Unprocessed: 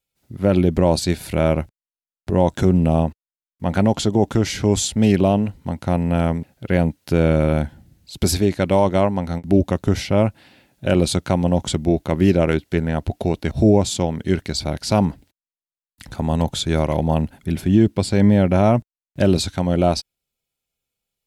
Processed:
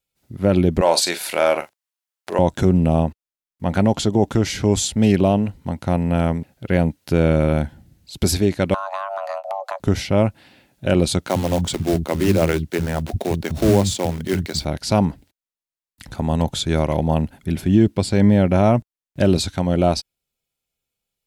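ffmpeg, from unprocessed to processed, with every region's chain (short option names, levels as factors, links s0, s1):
-filter_complex "[0:a]asettb=1/sr,asplit=3[s0][s1][s2];[s0]atrim=end=0.814[s3];[s1]atrim=start=0.81:end=2.39,asetpts=PTS-STARTPTS,afade=t=in:d=0.004:c=qsin,afade=t=out:st=1.576:d=0.004:c=qsin,highpass=690,acontrast=86,asplit=2[s4][s5];[s5]adelay=41,volume=0.266[s6];[s4][s6]amix=inputs=2:normalize=0,atrim=end_sample=69678[s7];[s2]atrim=start=2.386[s8];[s3][s7]acrossfade=d=0.004:c1=hsin:c2=qsin[s9];[s9][s8]acrossfade=d=0.004:c1=qsin:c2=hsin,asettb=1/sr,asplit=3[s10][s11][s12];[s10]atrim=end=8.744[s13];[s11]atrim=start=8.74:end=9.8,asetpts=PTS-STARTPTS,afade=t=in:d=0.004:c=qsin,afade=t=out:st=1.056:d=0.004:c=qsin,highshelf=f=6800:g=-5.5,afreqshift=480,acompressor=threshold=0.0794:ratio=12:attack=3.2:release=140:knee=1:detection=peak[s14];[s12]atrim=start=9.796[s15];[s13][s14]acrossfade=d=0.004:c1=hsin:c2=qsin[s16];[s16][s15]acrossfade=d=0.004:c1=qsin:c2=hsin,asettb=1/sr,asplit=3[s17][s18][s19];[s17]atrim=end=11.274[s20];[s18]atrim=start=11.27:end=14.65,asetpts=PTS-STARTPTS,afade=t=in:d=0.004:c=qsin,afade=t=out:st=3.376:d=0.004:c=qsin,acrusher=bits=4:mode=log:mix=0:aa=0.000001,acrossover=split=220[s21][s22];[s21]adelay=60[s23];[s23][s22]amix=inputs=2:normalize=0,atrim=end_sample=149058[s24];[s19]atrim=start=14.646[s25];[s20][s24]acrossfade=d=0.004:c1=hsin:c2=qsin[s26];[s26][s25]acrossfade=d=0.004:c1=qsin:c2=hsin"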